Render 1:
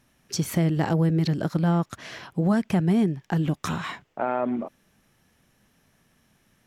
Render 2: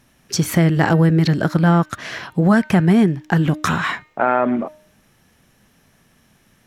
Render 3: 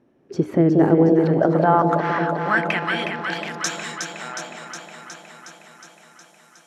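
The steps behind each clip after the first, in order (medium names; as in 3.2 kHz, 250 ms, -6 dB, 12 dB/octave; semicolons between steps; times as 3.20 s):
de-hum 306.1 Hz, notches 14; dynamic bell 1.6 kHz, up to +7 dB, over -45 dBFS, Q 1.4; trim +7.5 dB
band-pass sweep 380 Hz -> 7.4 kHz, 0.97–3.85 s; echo whose repeats swap between lows and highs 182 ms, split 850 Hz, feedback 83%, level -4 dB; trim +7 dB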